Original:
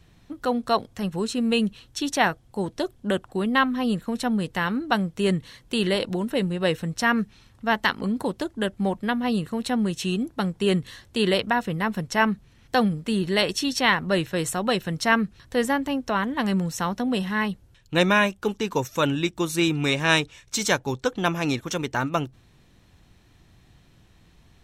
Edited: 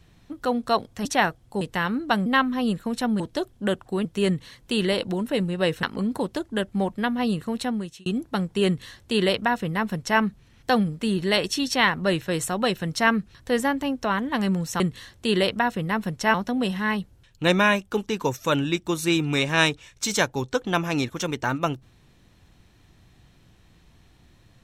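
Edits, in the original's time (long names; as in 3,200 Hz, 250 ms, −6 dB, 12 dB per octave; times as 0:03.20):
0:01.05–0:02.07: remove
0:02.63–0:03.48: swap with 0:04.42–0:05.07
0:06.85–0:07.88: remove
0:09.62–0:10.11: fade out linear
0:10.71–0:12.25: duplicate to 0:16.85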